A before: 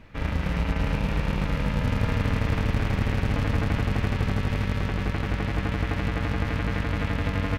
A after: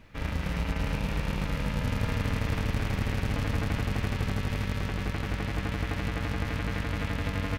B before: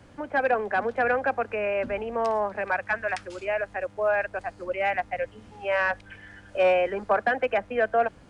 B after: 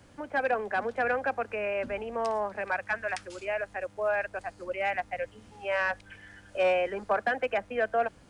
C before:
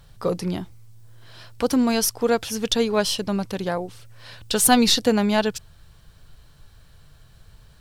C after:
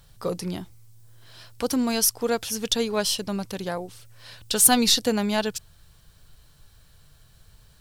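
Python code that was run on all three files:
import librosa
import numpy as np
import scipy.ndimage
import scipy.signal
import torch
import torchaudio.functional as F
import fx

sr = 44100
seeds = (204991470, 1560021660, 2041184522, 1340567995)

y = fx.high_shelf(x, sr, hz=4600.0, db=8.5)
y = y * 10.0 ** (-4.5 / 20.0)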